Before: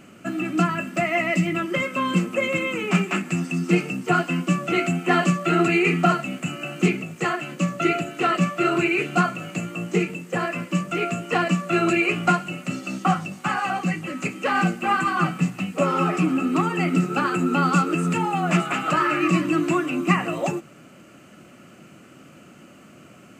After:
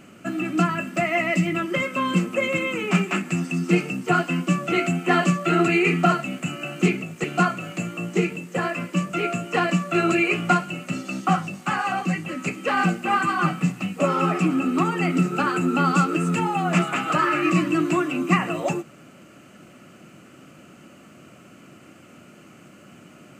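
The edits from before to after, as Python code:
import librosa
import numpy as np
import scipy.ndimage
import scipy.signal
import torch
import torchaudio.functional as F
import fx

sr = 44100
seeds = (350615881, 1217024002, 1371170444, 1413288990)

y = fx.edit(x, sr, fx.cut(start_s=7.24, length_s=1.78), tone=tone)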